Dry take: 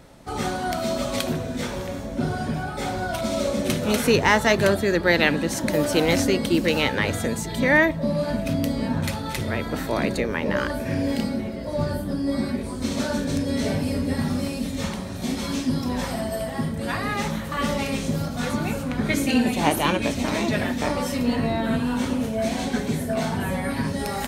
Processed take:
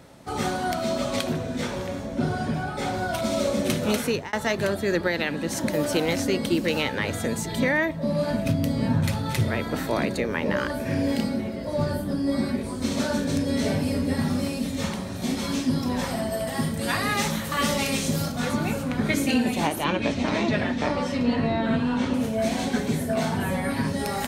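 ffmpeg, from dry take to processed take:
-filter_complex "[0:a]asettb=1/sr,asplit=3[a][b][c];[a]atrim=end=0.744[d];[b]atrim=start=0.74:end=2.94,asetpts=PTS-STARTPTS,afade=t=in:d=0.004:c=qsin,afade=t=out:st=2.196:d=0.004:c=qsin,highshelf=f=11k:g=-8.5[e];[c]atrim=start=2.936[f];[d][e]acrossfade=d=0.004:c1=hsin:c2=qsin[g];[g][f]acrossfade=d=0.004:c1=qsin:c2=hsin,asettb=1/sr,asplit=3[h][i][j];[h]atrim=end=8.454[k];[i]atrim=start=8.45:end=9.48,asetpts=PTS-STARTPTS,afade=t=in:d=0.004:c=qsin,afade=t=out:st=1.026:d=0.004:c=qsin,equalizer=f=120:t=o:w=0.77:g=11[l];[j]atrim=start=9.476[m];[k][l]acrossfade=d=0.004:c1=hsin:c2=qsin[n];[n][m]acrossfade=d=0.004:c1=qsin:c2=hsin,asettb=1/sr,asplit=3[o][p][q];[o]atrim=end=16.474[r];[p]atrim=start=16.47:end=18.32,asetpts=PTS-STARTPTS,afade=t=in:d=0.004:c=qsin,afade=t=out:st=1.846:d=0.004:c=qsin,highshelf=f=3k:g=9[s];[q]atrim=start=18.316[t];[r][s]acrossfade=d=0.004:c1=hsin:c2=qsin[u];[u][t]acrossfade=d=0.004:c1=qsin:c2=hsin,asettb=1/sr,asplit=3[v][w][x];[v]atrim=end=19.844[y];[w]atrim=start=19.84:end=22.14,asetpts=PTS-STARTPTS,afade=t=in:d=0.004:c=qsin,afade=t=out:st=2.296:d=0.004:c=qsin,lowpass=4.8k[z];[x]atrim=start=22.136[aa];[y][z]acrossfade=d=0.004:c1=hsin:c2=qsin[ab];[ab][aa]acrossfade=d=0.004:c1=qsin:c2=hsin,asplit=2[ac][ad];[ac]atrim=end=4.33,asetpts=PTS-STARTPTS,afade=t=out:st=3.93:d=0.4[ae];[ad]atrim=start=4.33,asetpts=PTS-STARTPTS,afade=t=in:d=0.004:c=hsin[af];[ae][af]concat=n=2:v=0:a=1,highpass=68,alimiter=limit=-12.5dB:level=0:latency=1:release=421"

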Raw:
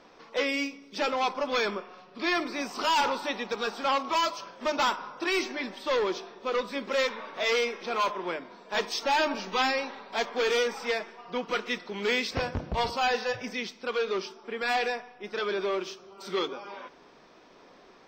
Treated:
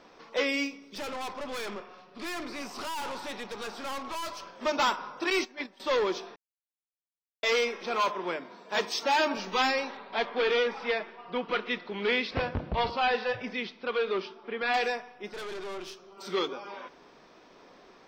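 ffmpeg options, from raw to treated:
-filter_complex "[0:a]asettb=1/sr,asplit=3[a][b][c];[a]atrim=end=0.954[d];[b]atrim=start=0.95:end=4.55,asetpts=PTS-STARTPTS,afade=t=in:d=0.004:c=qsin,afade=t=out:st=3.596:d=0.004:c=qsin,aeval=exprs='(tanh(50.1*val(0)+0.45)-tanh(0.45))/50.1':c=same[e];[c]atrim=start=4.546[f];[d][e]acrossfade=d=0.004:c1=hsin:c2=qsin[g];[g][f]acrossfade=d=0.004:c1=qsin:c2=hsin,asettb=1/sr,asplit=3[h][i][j];[h]atrim=end=5.304[k];[i]atrim=start=5.3:end=5.8,asetpts=PTS-STARTPTS,afade=t=in:d=0.004:c=qsin,afade=t=out:st=0.496:d=0.004:c=qsin,agate=range=-16dB:threshold=-33dB:ratio=16:release=100:detection=peak[l];[j]atrim=start=5.796[m];[k][l]acrossfade=d=0.004:c1=hsin:c2=qsin[n];[n][m]acrossfade=d=0.004:c1=qsin:c2=hsin,asettb=1/sr,asplit=3[o][p][q];[o]atrim=end=8.034[r];[p]atrim=start=8.03:end=9.37,asetpts=PTS-STARTPTS,afade=t=in:d=0.004:c=qsin,afade=t=out:st=1.336:d=0.004:c=qsin,highpass=73[s];[q]atrim=start=9.366[t];[r][s]acrossfade=d=0.004:c1=hsin:c2=qsin[u];[u][t]acrossfade=d=0.004:c1=qsin:c2=hsin,asettb=1/sr,asplit=3[v][w][x];[v]atrim=end=9.974[y];[w]atrim=start=9.97:end=14.74,asetpts=PTS-STARTPTS,afade=t=in:d=0.004:c=qsin,afade=t=out:st=4.766:d=0.004:c=qsin,lowpass=f=4.1k:w=0.5412,lowpass=f=4.1k:w=1.3066[z];[x]atrim=start=14.736[aa];[y][z]acrossfade=d=0.004:c1=hsin:c2=qsin[ab];[ab][aa]acrossfade=d=0.004:c1=qsin:c2=hsin,asettb=1/sr,asplit=3[ac][ad][ae];[ac]atrim=end=15.334[af];[ad]atrim=start=15.33:end=16.17,asetpts=PTS-STARTPTS,afade=t=in:d=0.004:c=qsin,afade=t=out:st=0.836:d=0.004:c=qsin,aeval=exprs='(tanh(63.1*val(0)+0.5)-tanh(0.5))/63.1':c=same[ag];[ae]atrim=start=16.166[ah];[af][ag]acrossfade=d=0.004:c1=hsin:c2=qsin[ai];[ai][ah]acrossfade=d=0.004:c1=qsin:c2=hsin,asplit=3[aj][ak][al];[aj]atrim=end=6.36,asetpts=PTS-STARTPTS,afade=t=out:st=6.356:d=0.004:c=hsin[am];[ak]atrim=start=6.36:end=7.43,asetpts=PTS-STARTPTS,volume=0[an];[al]atrim=start=7.43,asetpts=PTS-STARTPTS,afade=t=in:d=0.004:c=hsin[ao];[am][an][ao]concat=n=3:v=0:a=1"

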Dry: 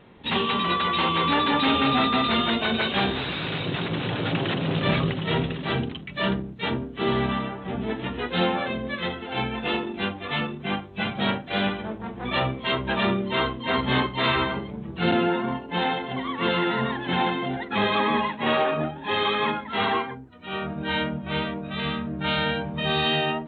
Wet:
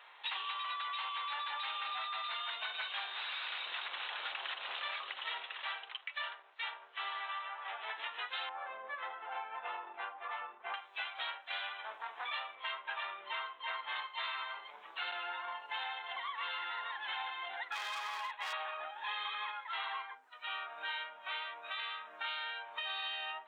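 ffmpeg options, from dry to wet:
-filter_complex "[0:a]asettb=1/sr,asplit=3[a][b][c];[a]atrim=end=5.464[d];[b]atrim=start=5.46:end=7.98,asetpts=PTS-STARTPTS,afade=t=in:d=0.004:c=qsin,afade=t=out:st=2.516:d=0.004:c=qsin,highpass=500,lowpass=4k[e];[c]atrim=start=7.976[f];[d][e]acrossfade=d=0.004:c1=hsin:c2=qsin[g];[g][f]acrossfade=d=0.004:c1=qsin:c2=hsin,asettb=1/sr,asplit=3[h][i][j];[h]atrim=end=8.494[k];[i]atrim=start=8.49:end=10.74,asetpts=PTS-STARTPTS,afade=t=in:d=0.004:c=qsin,afade=t=out:st=2.246:d=0.004:c=qsin,lowpass=1.1k[l];[j]atrim=start=10.736[m];[k][l]acrossfade=d=0.004:c1=hsin:c2=qsin[n];[n][m]acrossfade=d=0.004:c1=qsin:c2=hsin,asettb=1/sr,asplit=3[o][p][q];[o]atrim=end=12.554[r];[p]atrim=start=12.55:end=13.96,asetpts=PTS-STARTPTS,afade=t=in:d=0.004:c=qsin,afade=t=out:st=1.406:d=0.004:c=qsin,lowpass=3.1k[s];[q]atrim=start=13.956[t];[r][s]acrossfade=d=0.004:c1=hsin:c2=qsin[u];[u][t]acrossfade=d=0.004:c1=qsin:c2=hsin,asettb=1/sr,asplit=3[v][w][x];[v]atrim=end=17.674[y];[w]atrim=start=17.67:end=18.53,asetpts=PTS-STARTPTS,afade=t=in:d=0.004:c=qsin,afade=t=out:st=0.856:d=0.004:c=qsin,volume=23dB,asoftclip=hard,volume=-23dB[z];[x]atrim=start=18.526[aa];[y][z]acrossfade=d=0.004:c1=hsin:c2=qsin[ab];[ab][aa]acrossfade=d=0.004:c1=qsin:c2=hsin,highpass=f=880:w=0.5412,highpass=f=880:w=1.3066,acompressor=threshold=-40dB:ratio=6,volume=1.5dB"

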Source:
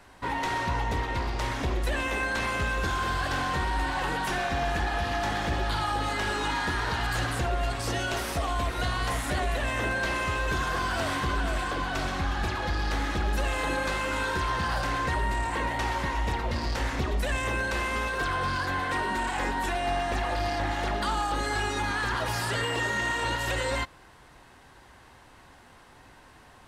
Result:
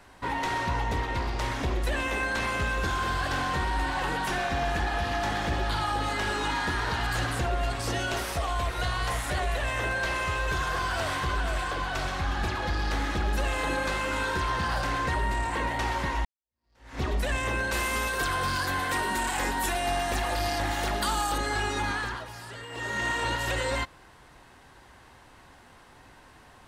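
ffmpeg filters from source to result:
-filter_complex "[0:a]asettb=1/sr,asplit=3[a][b][c];[a]atrim=end=8.244[d];[b]atrim=start=8.24:end=12.28,asetpts=PTS-STARTPTS,afade=t=in:d=0.004:c=qsin,afade=t=out:st=4.036:d=0.004:c=qsin,equalizer=f=250:t=o:w=0.77:g=-8[e];[c]atrim=start=12.276[f];[d][e]acrossfade=d=0.004:c1=hsin:c2=qsin[g];[g][f]acrossfade=d=0.004:c1=qsin:c2=hsin,asettb=1/sr,asplit=3[h][i][j];[h]atrim=end=17.724[k];[i]atrim=start=17.72:end=21.38,asetpts=PTS-STARTPTS,afade=t=in:d=0.004:c=qsin,afade=t=out:st=3.656:d=0.004:c=qsin,aemphasis=mode=production:type=50fm[l];[j]atrim=start=21.376[m];[k][l]acrossfade=d=0.004:c1=hsin:c2=qsin[n];[n][m]acrossfade=d=0.004:c1=qsin:c2=hsin,asplit=4[o][p][q][r];[o]atrim=end=16.25,asetpts=PTS-STARTPTS,afade=t=out:st=16.246:d=0.004:c=hsin[s];[p]atrim=start=16.25:end=22.27,asetpts=PTS-STARTPTS,afade=t=in:d=0.77:c=exp,afade=t=out:st=5.65:d=0.37:silence=0.237137[t];[q]atrim=start=22.27:end=22.69,asetpts=PTS-STARTPTS,volume=-12.5dB[u];[r]atrim=start=22.69,asetpts=PTS-STARTPTS,afade=t=in:d=0.37:silence=0.237137[v];[s][t][u][v]concat=n=4:v=0:a=1"

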